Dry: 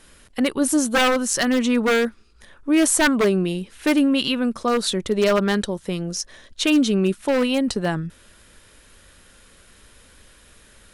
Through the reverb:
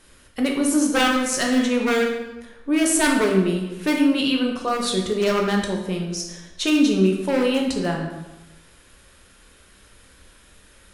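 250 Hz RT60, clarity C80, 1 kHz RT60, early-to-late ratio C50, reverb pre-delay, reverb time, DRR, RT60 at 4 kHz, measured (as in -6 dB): 1.1 s, 6.5 dB, 1.1 s, 4.5 dB, 6 ms, 1.1 s, 0.0 dB, 0.80 s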